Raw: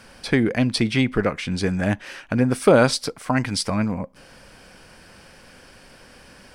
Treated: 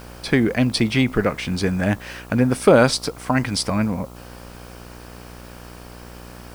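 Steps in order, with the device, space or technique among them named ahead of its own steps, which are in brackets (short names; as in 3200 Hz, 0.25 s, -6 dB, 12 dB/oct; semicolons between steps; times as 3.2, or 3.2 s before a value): video cassette with head-switching buzz (buzz 60 Hz, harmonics 23, -42 dBFS -4 dB/oct; white noise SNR 30 dB); gain +1.5 dB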